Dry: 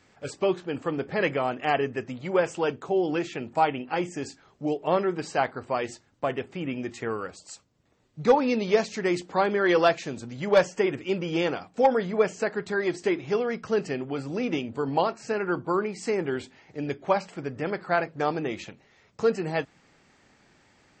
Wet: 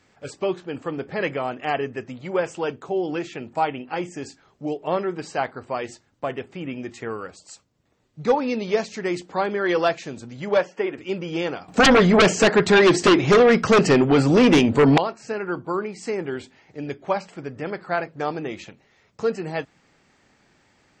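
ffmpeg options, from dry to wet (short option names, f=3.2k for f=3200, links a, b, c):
-filter_complex "[0:a]asettb=1/sr,asplit=3[a][b][c];[a]atrim=end=10.574[d];[b]atrim=start=10.57:end=10.98,asetpts=PTS-STARTPTS,afade=t=in:d=0.004:c=qsin,afade=t=out:st=0.406:d=0.004:c=qsin,highpass=250,lowpass=3.4k[e];[c]atrim=start=10.976[f];[d][e]acrossfade=d=0.004:c1=hsin:c2=qsin[g];[g][f]acrossfade=d=0.004:c1=qsin:c2=hsin,asettb=1/sr,asplit=3[h][i][j];[h]atrim=end=11.684[k];[i]atrim=start=11.68:end=14.98,asetpts=PTS-STARTPTS,afade=t=in:d=0.004:c=qsin,afade=t=out:st=3.296:d=0.004:c=qsin,aeval=exprs='0.316*sin(PI/2*4.47*val(0)/0.316)':c=same[l];[j]atrim=start=14.976[m];[k][l]acrossfade=d=0.004:c1=hsin:c2=qsin[n];[n][m]acrossfade=d=0.004:c1=qsin:c2=hsin"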